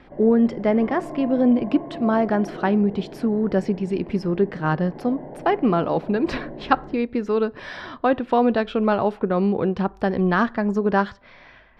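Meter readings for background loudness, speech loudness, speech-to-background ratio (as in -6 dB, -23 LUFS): -37.0 LUFS, -22.0 LUFS, 15.0 dB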